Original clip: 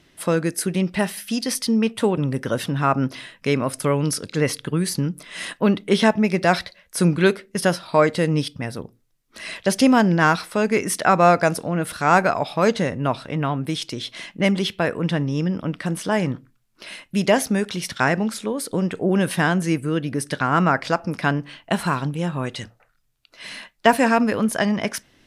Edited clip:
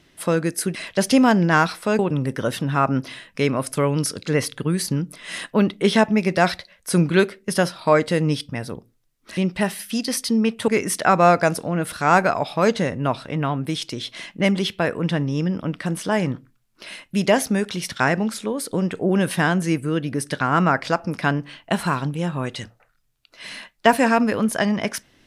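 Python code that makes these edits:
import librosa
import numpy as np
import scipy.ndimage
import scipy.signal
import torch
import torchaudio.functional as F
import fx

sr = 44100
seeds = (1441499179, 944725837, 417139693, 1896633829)

y = fx.edit(x, sr, fx.swap(start_s=0.75, length_s=1.31, other_s=9.44, other_length_s=1.24), tone=tone)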